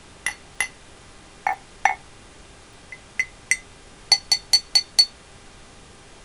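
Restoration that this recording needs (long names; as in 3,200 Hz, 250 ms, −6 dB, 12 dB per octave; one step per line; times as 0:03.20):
hum removal 399.8 Hz, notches 9
repair the gap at 0:00.55/0:01.53/0:02.73/0:03.51, 2.2 ms
noise reduction from a noise print 22 dB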